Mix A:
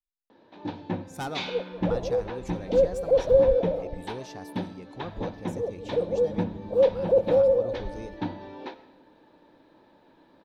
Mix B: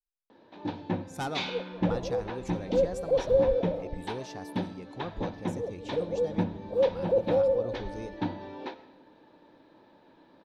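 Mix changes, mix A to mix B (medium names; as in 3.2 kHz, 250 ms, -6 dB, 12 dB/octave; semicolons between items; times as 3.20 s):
speech: add low-pass 12 kHz; second sound -4.5 dB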